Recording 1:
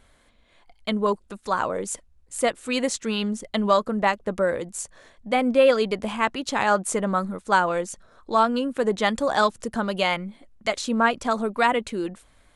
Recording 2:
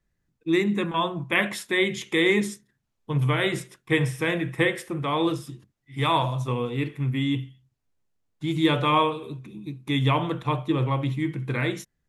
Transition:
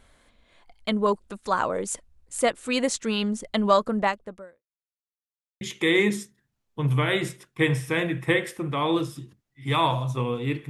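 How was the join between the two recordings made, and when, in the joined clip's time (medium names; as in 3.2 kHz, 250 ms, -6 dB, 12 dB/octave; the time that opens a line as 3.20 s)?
recording 1
3.98–4.63 s: fade out quadratic
4.63–5.61 s: mute
5.61 s: go over to recording 2 from 1.92 s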